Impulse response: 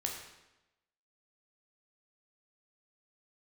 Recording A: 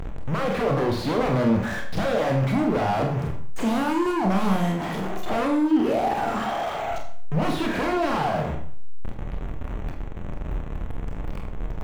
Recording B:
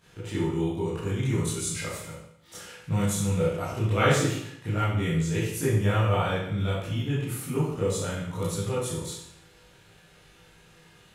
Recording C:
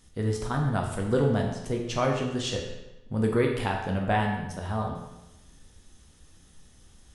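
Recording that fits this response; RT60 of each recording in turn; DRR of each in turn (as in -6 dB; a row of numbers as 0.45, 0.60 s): C; 0.55, 0.75, 0.95 s; 1.5, -10.5, 0.0 dB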